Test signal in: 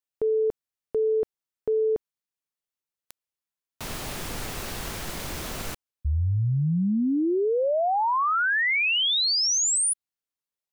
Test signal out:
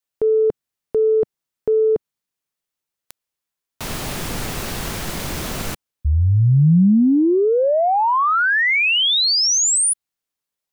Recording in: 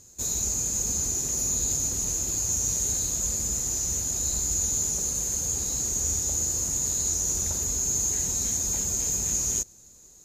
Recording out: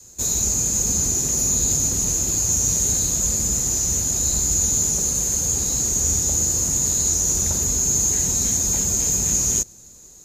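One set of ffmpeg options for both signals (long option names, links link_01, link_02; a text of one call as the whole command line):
ffmpeg -i in.wav -af "acontrast=67,adynamicequalizer=threshold=0.0178:dfrequency=170:dqfactor=0.91:tfrequency=170:tqfactor=0.91:attack=5:release=100:ratio=0.375:range=2.5:mode=boostabove:tftype=bell" out.wav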